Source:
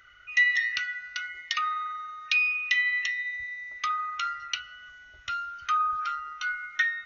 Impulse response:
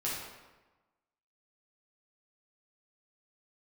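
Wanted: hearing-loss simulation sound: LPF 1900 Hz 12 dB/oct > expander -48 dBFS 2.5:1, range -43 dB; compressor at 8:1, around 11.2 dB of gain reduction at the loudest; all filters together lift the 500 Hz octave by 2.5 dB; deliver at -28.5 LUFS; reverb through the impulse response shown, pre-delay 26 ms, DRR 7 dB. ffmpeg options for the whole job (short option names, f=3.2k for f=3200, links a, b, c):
-filter_complex "[0:a]equalizer=f=500:t=o:g=3.5,acompressor=threshold=-30dB:ratio=8,asplit=2[a][b];[1:a]atrim=start_sample=2205,adelay=26[c];[b][c]afir=irnorm=-1:irlink=0,volume=-12dB[d];[a][d]amix=inputs=2:normalize=0,lowpass=1.9k,agate=range=-43dB:threshold=-48dB:ratio=2.5,volume=7dB"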